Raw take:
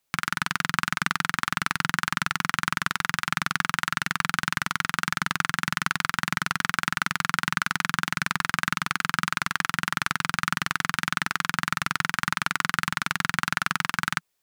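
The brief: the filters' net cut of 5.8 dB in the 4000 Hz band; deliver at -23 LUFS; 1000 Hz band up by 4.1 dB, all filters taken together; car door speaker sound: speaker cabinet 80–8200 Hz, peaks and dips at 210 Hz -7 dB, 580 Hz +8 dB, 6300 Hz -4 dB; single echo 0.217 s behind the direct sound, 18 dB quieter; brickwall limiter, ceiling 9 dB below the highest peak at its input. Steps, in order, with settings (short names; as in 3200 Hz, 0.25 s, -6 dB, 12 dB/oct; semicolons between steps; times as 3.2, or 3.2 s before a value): bell 1000 Hz +6 dB; bell 4000 Hz -8 dB; limiter -13 dBFS; speaker cabinet 80–8200 Hz, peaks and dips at 210 Hz -7 dB, 580 Hz +8 dB, 6300 Hz -4 dB; echo 0.217 s -18 dB; gain +9 dB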